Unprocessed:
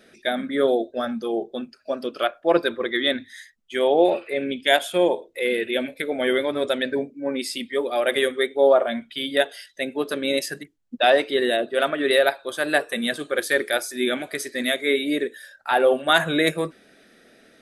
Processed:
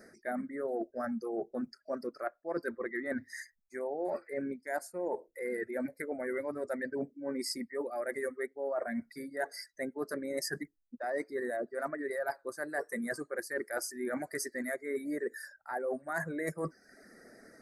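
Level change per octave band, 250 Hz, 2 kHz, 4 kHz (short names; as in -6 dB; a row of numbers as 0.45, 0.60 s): -11.5, -14.5, -23.0 dB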